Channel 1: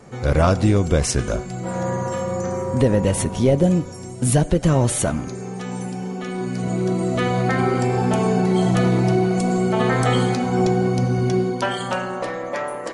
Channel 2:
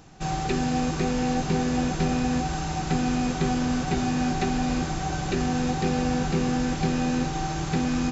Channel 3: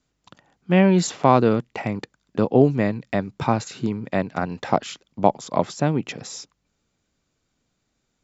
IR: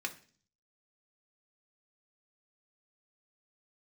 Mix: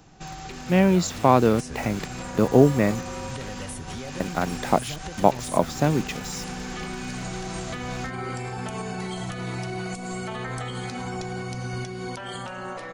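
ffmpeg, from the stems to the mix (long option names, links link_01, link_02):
-filter_complex "[0:a]alimiter=limit=-16dB:level=0:latency=1:release=294,adelay=550,volume=1.5dB[link_01];[1:a]aeval=exprs='0.112*(abs(mod(val(0)/0.112+3,4)-2)-1)':channel_layout=same,volume=-2dB[link_02];[2:a]acrusher=bits=6:mix=0:aa=0.000001,volume=-3dB,asplit=3[link_03][link_04][link_05];[link_03]atrim=end=3.08,asetpts=PTS-STARTPTS,afade=type=out:start_time=3.076:duration=0.004:curve=hsin[link_06];[link_04]atrim=start=3.08:end=4.2,asetpts=PTS-STARTPTS,volume=0[link_07];[link_05]atrim=start=4.2,asetpts=PTS-STARTPTS,afade=type=in:duration=0.004:curve=hsin[link_08];[link_06][link_07][link_08]concat=n=3:v=0:a=1[link_09];[link_01][link_02]amix=inputs=2:normalize=0,acrossover=split=85|990[link_10][link_11][link_12];[link_10]acompressor=threshold=-42dB:ratio=4[link_13];[link_11]acompressor=threshold=-39dB:ratio=4[link_14];[link_12]acompressor=threshold=-38dB:ratio=4[link_15];[link_13][link_14][link_15]amix=inputs=3:normalize=0,alimiter=level_in=3dB:limit=-24dB:level=0:latency=1:release=222,volume=-3dB,volume=0dB[link_16];[link_09][link_16]amix=inputs=2:normalize=0,dynaudnorm=framelen=240:gausssize=11:maxgain=5dB"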